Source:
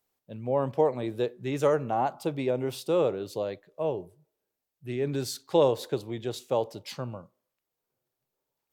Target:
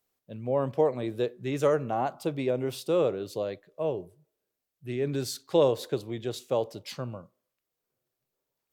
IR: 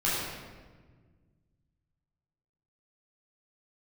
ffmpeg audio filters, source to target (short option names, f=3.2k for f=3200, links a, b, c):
-af "equalizer=f=870:w=5.5:g=-5.5"